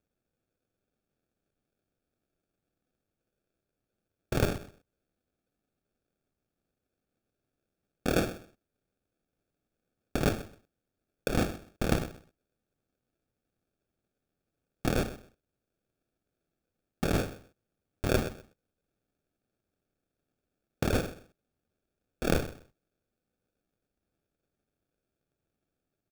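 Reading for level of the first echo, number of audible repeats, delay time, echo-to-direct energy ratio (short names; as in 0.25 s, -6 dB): -15.5 dB, 2, 0.128 s, -15.5 dB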